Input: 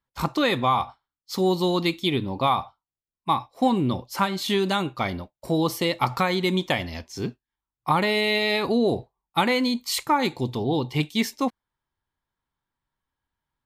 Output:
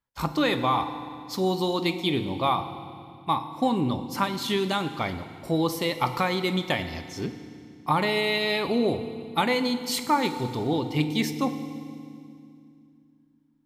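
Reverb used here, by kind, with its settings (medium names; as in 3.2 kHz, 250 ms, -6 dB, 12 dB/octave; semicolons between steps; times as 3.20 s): FDN reverb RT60 2.3 s, low-frequency decay 1.55×, high-frequency decay 0.95×, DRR 9 dB; trim -2.5 dB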